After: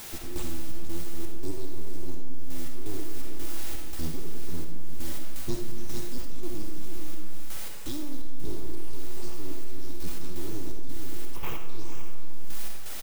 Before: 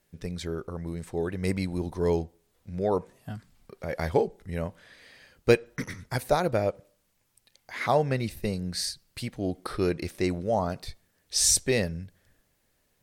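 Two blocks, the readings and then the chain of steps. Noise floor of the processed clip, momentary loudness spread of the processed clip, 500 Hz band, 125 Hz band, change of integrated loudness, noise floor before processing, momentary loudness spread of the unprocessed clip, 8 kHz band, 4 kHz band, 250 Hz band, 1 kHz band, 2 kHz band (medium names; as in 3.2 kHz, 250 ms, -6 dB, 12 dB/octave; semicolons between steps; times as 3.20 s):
-27 dBFS, 6 LU, -15.5 dB, -5.5 dB, -11.5 dB, -72 dBFS, 16 LU, -12.0 dB, -9.0 dB, -7.0 dB, -14.5 dB, -11.5 dB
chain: brick-wall FIR band-stop 230–3400 Hz; on a send: delay 454 ms -7.5 dB; on the sum: full-wave rectifier; rippled EQ curve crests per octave 0.72, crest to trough 8 dB; added noise white -46 dBFS; trance gate "x.xx.xx.xxxx.." 84 bpm -12 dB; de-esser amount 85%; algorithmic reverb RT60 1.2 s, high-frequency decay 0.5×, pre-delay 25 ms, DRR 1 dB; reverse; compression 12:1, threshold -24 dBFS, peak gain reduction 18 dB; reverse; trim +7.5 dB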